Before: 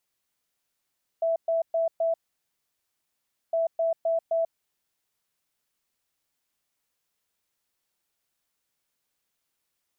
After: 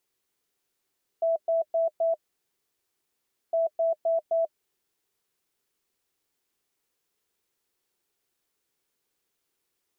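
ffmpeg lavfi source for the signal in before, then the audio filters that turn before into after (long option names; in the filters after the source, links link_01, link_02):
-f lavfi -i "aevalsrc='0.0841*sin(2*PI*660*t)*clip(min(mod(mod(t,2.31),0.26),0.14-mod(mod(t,2.31),0.26))/0.005,0,1)*lt(mod(t,2.31),1.04)':duration=4.62:sample_rate=44100"
-af "equalizer=frequency=390:width_type=o:width=0.65:gain=9.5,bandreject=frequency=610:width=12"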